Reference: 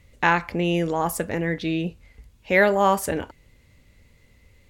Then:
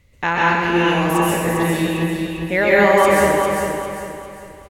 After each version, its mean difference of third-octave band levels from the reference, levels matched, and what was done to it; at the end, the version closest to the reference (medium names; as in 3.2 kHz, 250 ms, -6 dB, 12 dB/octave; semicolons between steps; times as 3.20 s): 11.0 dB: on a send: feedback delay 400 ms, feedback 38%, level -5 dB; on the sum: plate-style reverb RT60 1.2 s, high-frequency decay 1×, pre-delay 115 ms, DRR -6 dB; trim -1.5 dB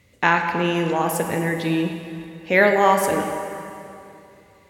6.5 dB: high-pass 120 Hz 12 dB/octave; plate-style reverb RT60 2.8 s, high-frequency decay 0.8×, DRR 4 dB; trim +1.5 dB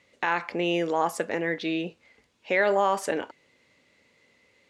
4.0 dB: band-pass 320–6400 Hz; peak limiter -13 dBFS, peak gain reduction 9.5 dB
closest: third